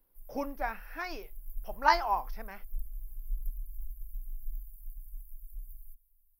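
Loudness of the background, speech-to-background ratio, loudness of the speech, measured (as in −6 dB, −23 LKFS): −47.5 LKFS, 15.5 dB, −32.0 LKFS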